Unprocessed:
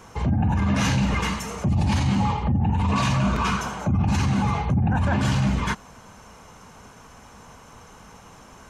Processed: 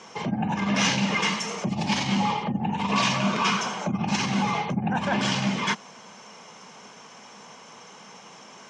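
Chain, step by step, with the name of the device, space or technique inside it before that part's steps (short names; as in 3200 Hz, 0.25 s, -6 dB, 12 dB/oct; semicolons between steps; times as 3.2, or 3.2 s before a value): television speaker (speaker cabinet 180–7800 Hz, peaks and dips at 280 Hz -6 dB, 1400 Hz -3 dB, 2200 Hz +4 dB, 3200 Hz +6 dB, 5400 Hz +7 dB); gain +1 dB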